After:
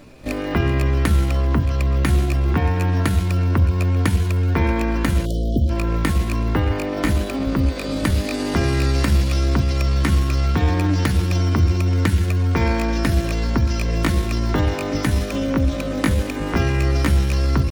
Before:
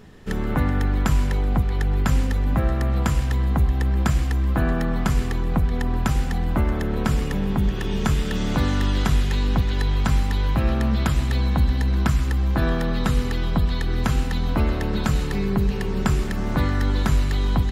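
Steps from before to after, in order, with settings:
time-frequency box erased 0:05.27–0:05.70, 520–2,100 Hz
pitch shifter +5.5 semitones
mains-hum notches 50/100/150/200 Hz
level +2.5 dB

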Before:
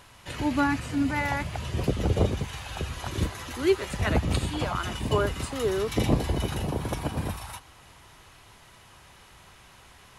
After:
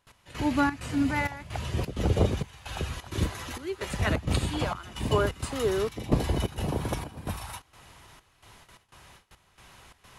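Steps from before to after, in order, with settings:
noise gate with hold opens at −42 dBFS
gate pattern "x..xxx.xxx" 130 BPM −12 dB

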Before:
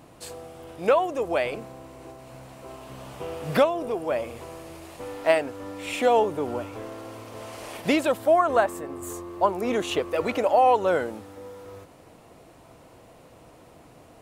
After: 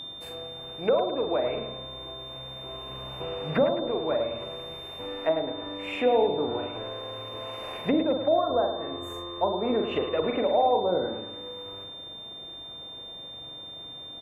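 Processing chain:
flat-topped bell 5,700 Hz −14 dB
double-tracking delay 44 ms −5 dB
treble cut that deepens with the level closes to 640 Hz, closed at −18 dBFS
steady tone 3,600 Hz −35 dBFS
on a send: delay with a low-pass on its return 107 ms, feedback 47%, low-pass 3,600 Hz, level −9 dB
on the sum: level −2 dB

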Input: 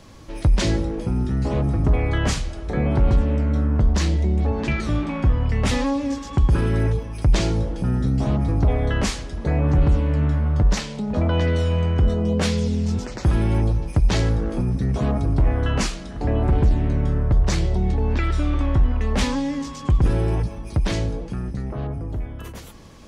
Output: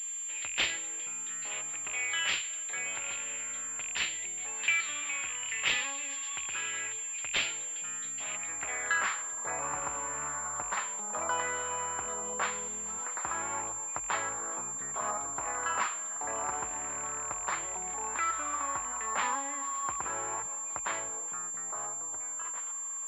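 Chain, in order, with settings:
loose part that buzzes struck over −14 dBFS, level −31 dBFS
band-pass filter sweep 2,800 Hz → 1,100 Hz, 0:08.15–0:09.33
tilt shelving filter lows −9 dB, about 730 Hz
switching amplifier with a slow clock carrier 7,300 Hz

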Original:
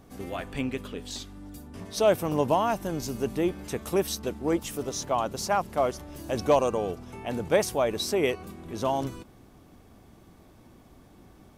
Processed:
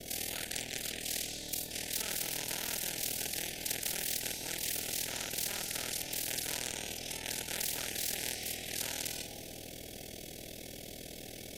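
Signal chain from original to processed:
every overlapping window played backwards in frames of 95 ms
in parallel at +0.5 dB: downward compressor, threshold −39 dBFS, peak gain reduction 18.5 dB
on the sum: harmonic generator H 6 −25 dB, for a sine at −11.5 dBFS
ring modulation 20 Hz
Butterworth band-reject 1,100 Hz, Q 0.53
on a send at −20 dB: convolution reverb RT60 2.3 s, pre-delay 71 ms
on the sum: every bin compressed towards the loudest bin 10 to 1

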